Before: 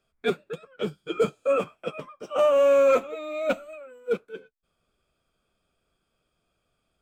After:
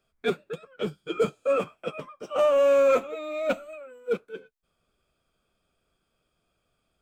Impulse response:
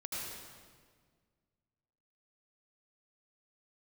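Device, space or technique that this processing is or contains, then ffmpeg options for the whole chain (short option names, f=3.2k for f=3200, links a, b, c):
parallel distortion: -filter_complex "[0:a]asplit=2[a][b];[b]asoftclip=type=hard:threshold=-30.5dB,volume=-13.5dB[c];[a][c]amix=inputs=2:normalize=0,volume=-1.5dB"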